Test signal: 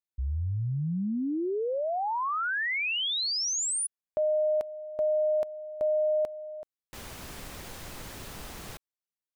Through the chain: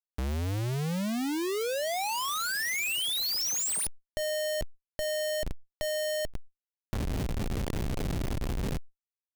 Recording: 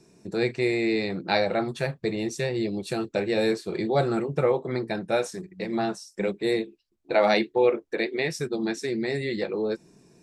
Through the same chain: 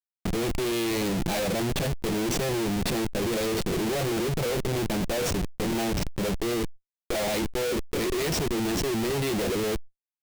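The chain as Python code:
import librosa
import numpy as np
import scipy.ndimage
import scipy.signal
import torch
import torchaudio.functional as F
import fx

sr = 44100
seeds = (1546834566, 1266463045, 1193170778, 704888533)

y = fx.schmitt(x, sr, flips_db=-36.5)
y = fx.dynamic_eq(y, sr, hz=1200.0, q=0.96, threshold_db=-44.0, ratio=4.0, max_db=-6)
y = fx.env_flatten(y, sr, amount_pct=70)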